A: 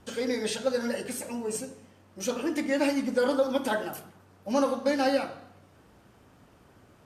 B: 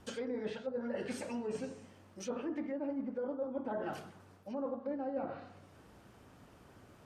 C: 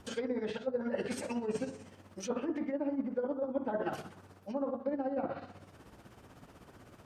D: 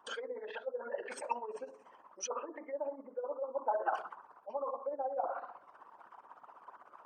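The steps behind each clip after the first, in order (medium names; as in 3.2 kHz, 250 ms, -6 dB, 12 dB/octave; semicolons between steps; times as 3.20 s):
low-pass that closes with the level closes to 780 Hz, closed at -23.5 dBFS; reverse; compression 10:1, threshold -33 dBFS, peak gain reduction 13 dB; reverse; trim -1.5 dB
tremolo 16 Hz, depth 59%; trim +6 dB
resonances exaggerated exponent 2; resonant high-pass 1 kHz, resonance Q 4.9; trim +4 dB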